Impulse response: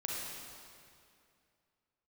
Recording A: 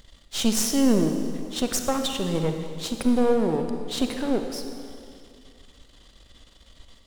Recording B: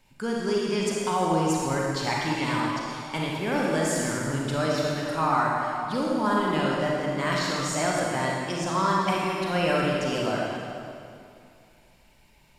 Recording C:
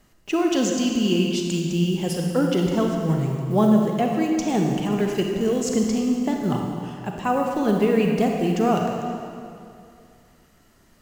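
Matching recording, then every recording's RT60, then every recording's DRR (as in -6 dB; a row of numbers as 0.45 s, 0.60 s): B; 2.4 s, 2.4 s, 2.4 s; 5.5 dB, -4.0 dB, 1.0 dB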